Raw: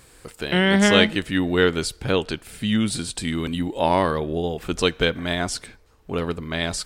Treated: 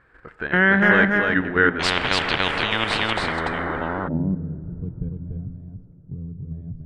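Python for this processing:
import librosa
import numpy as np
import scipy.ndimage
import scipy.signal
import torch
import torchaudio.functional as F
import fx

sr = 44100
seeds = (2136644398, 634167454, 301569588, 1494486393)

y = fx.tracing_dist(x, sr, depth_ms=0.033)
y = fx.level_steps(y, sr, step_db=10)
y = fx.filter_sweep_lowpass(y, sr, from_hz=1600.0, to_hz=130.0, start_s=2.68, end_s=4.31, q=4.0)
y = y + 10.0 ** (-3.5 / 20.0) * np.pad(y, (int(289 * sr / 1000.0), 0))[:len(y)]
y = fx.rev_plate(y, sr, seeds[0], rt60_s=4.0, hf_ratio=0.45, predelay_ms=0, drr_db=14.5)
y = fx.spectral_comp(y, sr, ratio=10.0, at=(1.79, 4.07), fade=0.02)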